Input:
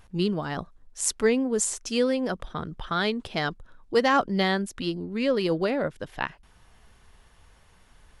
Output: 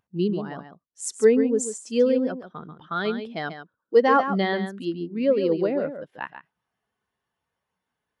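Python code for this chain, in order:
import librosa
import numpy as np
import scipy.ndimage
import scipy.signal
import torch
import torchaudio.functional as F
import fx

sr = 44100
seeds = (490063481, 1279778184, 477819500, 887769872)

y = scipy.signal.sosfilt(scipy.signal.butter(2, 160.0, 'highpass', fs=sr, output='sos'), x)
y = y + 10.0 ** (-6.5 / 20.0) * np.pad(y, (int(139 * sr / 1000.0), 0))[:len(y)]
y = fx.spectral_expand(y, sr, expansion=1.5)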